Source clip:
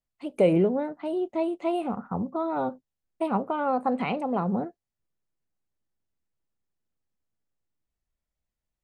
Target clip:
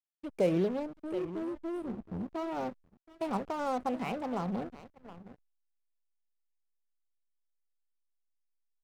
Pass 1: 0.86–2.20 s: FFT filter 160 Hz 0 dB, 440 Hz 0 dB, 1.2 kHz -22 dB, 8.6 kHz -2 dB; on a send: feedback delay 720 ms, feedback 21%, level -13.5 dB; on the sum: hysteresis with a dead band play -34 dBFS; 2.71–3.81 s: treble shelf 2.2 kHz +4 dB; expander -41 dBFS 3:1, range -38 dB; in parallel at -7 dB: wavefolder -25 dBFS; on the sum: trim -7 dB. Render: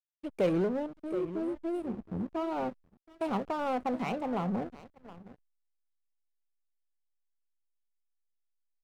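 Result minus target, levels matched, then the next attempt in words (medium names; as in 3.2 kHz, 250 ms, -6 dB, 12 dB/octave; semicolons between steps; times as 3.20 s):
wavefolder: distortion -18 dB
0.86–2.20 s: FFT filter 160 Hz 0 dB, 440 Hz 0 dB, 1.2 kHz -22 dB, 8.6 kHz -2 dB; on a send: feedback delay 720 ms, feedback 21%, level -13.5 dB; on the sum: hysteresis with a dead band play -34 dBFS; 2.71–3.81 s: treble shelf 2.2 kHz +4 dB; expander -41 dBFS 3:1, range -38 dB; in parallel at -7 dB: wavefolder -33 dBFS; on the sum: trim -7 dB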